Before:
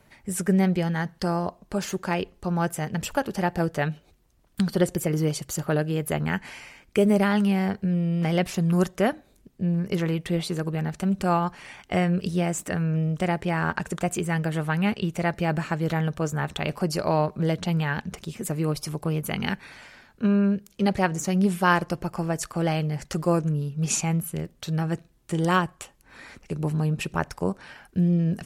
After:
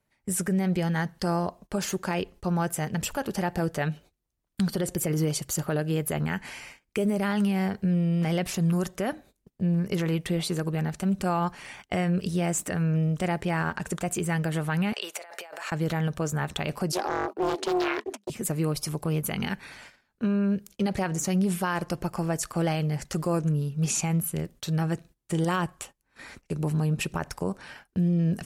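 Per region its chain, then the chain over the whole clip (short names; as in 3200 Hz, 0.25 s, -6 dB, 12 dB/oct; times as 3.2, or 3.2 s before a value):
14.93–15.72 HPF 550 Hz 24 dB/oct + negative-ratio compressor -40 dBFS
16.92–18.3 gate -39 dBFS, range -31 dB + frequency shift +200 Hz + Doppler distortion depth 0.37 ms
whole clip: gate -46 dBFS, range -19 dB; bell 11000 Hz +4 dB 1.6 oct; limiter -17.5 dBFS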